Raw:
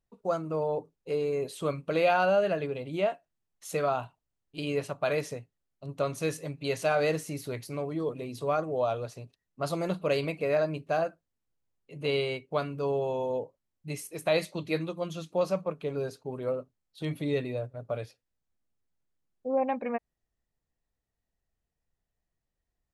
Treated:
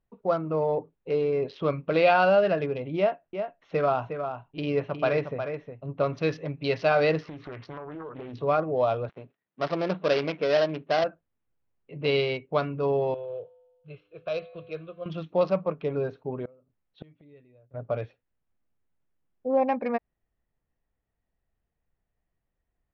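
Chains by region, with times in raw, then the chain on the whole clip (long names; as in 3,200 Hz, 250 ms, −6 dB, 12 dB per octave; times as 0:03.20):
0:02.97–0:06.17: high-shelf EQ 4,400 Hz −10 dB + single-tap delay 360 ms −7.5 dB
0:07.22–0:08.34: parametric band 1,200 Hz +14.5 dB 0.7 octaves + downward compressor 16 to 1, threshold −38 dBFS + highs frequency-modulated by the lows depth 0.64 ms
0:09.09–0:11.04: gap after every zero crossing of 0.17 ms + high-pass filter 190 Hz
0:13.14–0:15.06: one scale factor per block 5 bits + phaser with its sweep stopped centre 1,300 Hz, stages 8 + tuned comb filter 100 Hz, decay 1.5 s, harmonics odd
0:16.35–0:17.71: dynamic equaliser 940 Hz, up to −5 dB, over −43 dBFS, Q 0.84 + gate with flip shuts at −29 dBFS, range −27 dB
whole clip: adaptive Wiener filter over 9 samples; elliptic low-pass filter 5,300 Hz, stop band 40 dB; level +5 dB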